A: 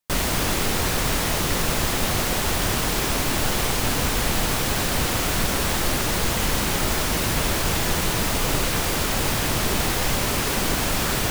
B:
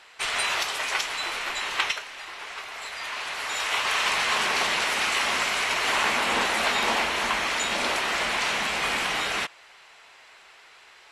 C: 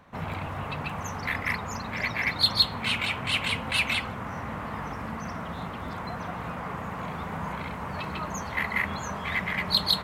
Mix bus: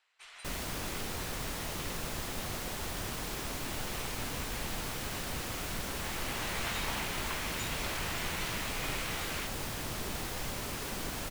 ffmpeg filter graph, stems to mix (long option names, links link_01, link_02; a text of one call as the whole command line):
ffmpeg -i stem1.wav -i stem2.wav -filter_complex "[0:a]adelay=350,volume=-15dB[link_01];[1:a]equalizer=frequency=190:width=0.37:gain=-10.5,volume=-12.5dB,afade=type=in:start_time=5.95:duration=0.62:silence=0.281838[link_02];[link_01][link_02]amix=inputs=2:normalize=0" out.wav